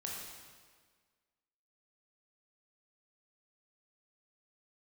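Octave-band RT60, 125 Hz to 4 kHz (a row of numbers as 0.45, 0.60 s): 1.6, 1.7, 1.7, 1.6, 1.5, 1.4 s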